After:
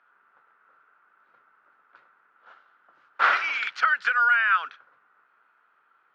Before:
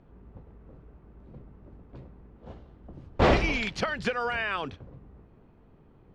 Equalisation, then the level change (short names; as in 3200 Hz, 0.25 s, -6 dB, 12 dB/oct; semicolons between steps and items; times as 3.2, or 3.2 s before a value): resonant high-pass 1400 Hz, resonance Q 6.9; air absorption 93 m; 0.0 dB